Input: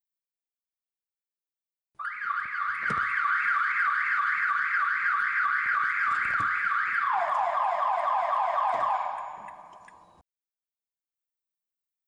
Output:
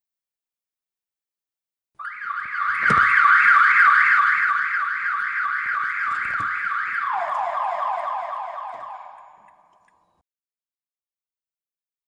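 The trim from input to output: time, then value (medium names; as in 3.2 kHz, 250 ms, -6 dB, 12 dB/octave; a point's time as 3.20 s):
2.35 s +1.5 dB
2.94 s +11.5 dB
4.01 s +11.5 dB
4.86 s +2 dB
7.90 s +2 dB
8.86 s -9 dB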